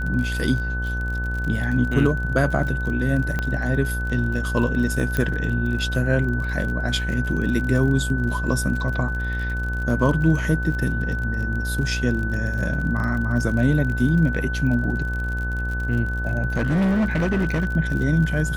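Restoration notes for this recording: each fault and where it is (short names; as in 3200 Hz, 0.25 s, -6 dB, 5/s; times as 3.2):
buzz 60 Hz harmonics 25 -26 dBFS
crackle 39/s -29 dBFS
tone 1500 Hz -28 dBFS
3.39 pop -12 dBFS
5.17 pop -10 dBFS
16.56–17.66 clipped -17 dBFS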